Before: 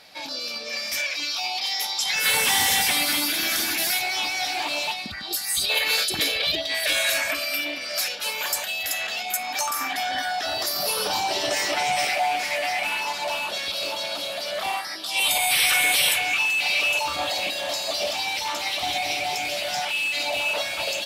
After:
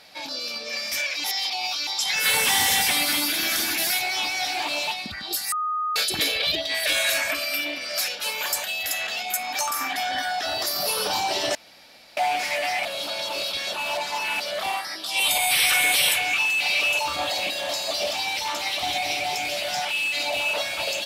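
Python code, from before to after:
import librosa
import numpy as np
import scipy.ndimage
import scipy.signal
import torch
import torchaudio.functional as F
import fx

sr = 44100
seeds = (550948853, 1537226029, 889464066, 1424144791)

y = fx.edit(x, sr, fx.reverse_span(start_s=1.24, length_s=0.63),
    fx.bleep(start_s=5.52, length_s=0.44, hz=1240.0, db=-23.0),
    fx.room_tone_fill(start_s=11.55, length_s=0.62),
    fx.reverse_span(start_s=12.85, length_s=1.55), tone=tone)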